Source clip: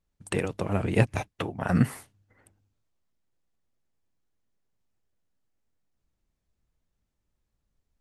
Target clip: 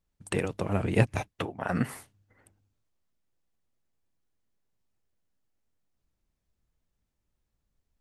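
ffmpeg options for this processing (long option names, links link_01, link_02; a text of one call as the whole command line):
ffmpeg -i in.wav -filter_complex "[0:a]asettb=1/sr,asplit=3[link_01][link_02][link_03];[link_01]atrim=end=1.454[link_04];[link_02]atrim=start=1.45:end=1.89,asetpts=PTS-STARTPTS,afade=type=in:duration=0.004:curve=qsin,afade=type=out:start_time=0.436:duration=0.004:curve=qsin,bass=frequency=250:gain=-8,treble=frequency=4000:gain=-5[link_05];[link_03]atrim=start=1.886[link_06];[link_04][link_05]acrossfade=duration=0.004:curve1=hsin:curve2=qsin[link_07];[link_07][link_06]acrossfade=duration=0.004:curve1=qsin:curve2=hsin,volume=-1dB" out.wav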